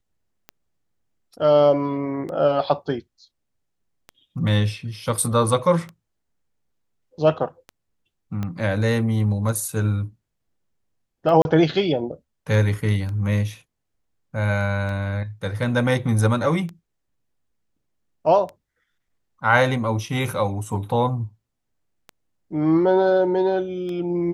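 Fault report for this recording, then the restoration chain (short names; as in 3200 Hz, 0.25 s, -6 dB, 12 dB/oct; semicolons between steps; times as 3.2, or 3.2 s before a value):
tick 33 1/3 rpm -21 dBFS
8.43 pop -16 dBFS
11.42–11.45 gap 31 ms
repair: de-click; interpolate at 11.42, 31 ms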